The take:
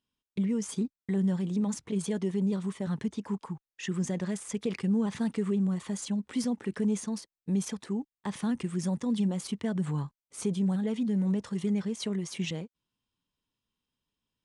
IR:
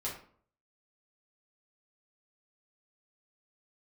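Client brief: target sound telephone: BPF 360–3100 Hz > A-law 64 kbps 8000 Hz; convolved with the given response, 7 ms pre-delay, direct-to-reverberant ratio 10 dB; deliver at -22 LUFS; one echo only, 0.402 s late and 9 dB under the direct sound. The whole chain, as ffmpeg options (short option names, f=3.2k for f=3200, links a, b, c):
-filter_complex "[0:a]aecho=1:1:402:0.355,asplit=2[a][b];[1:a]atrim=start_sample=2205,adelay=7[c];[b][c]afir=irnorm=-1:irlink=0,volume=-12.5dB[d];[a][d]amix=inputs=2:normalize=0,highpass=360,lowpass=3.1k,volume=17dB" -ar 8000 -c:a pcm_alaw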